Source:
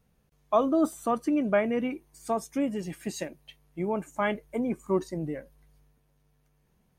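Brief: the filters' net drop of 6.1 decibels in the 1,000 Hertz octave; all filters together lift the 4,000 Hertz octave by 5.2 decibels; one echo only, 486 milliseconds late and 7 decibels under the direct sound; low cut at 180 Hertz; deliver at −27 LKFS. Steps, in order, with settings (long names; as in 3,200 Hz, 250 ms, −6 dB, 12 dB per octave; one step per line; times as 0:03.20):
high-pass filter 180 Hz
parametric band 1,000 Hz −9 dB
parametric band 4,000 Hz +7.5 dB
single-tap delay 486 ms −7 dB
level +4 dB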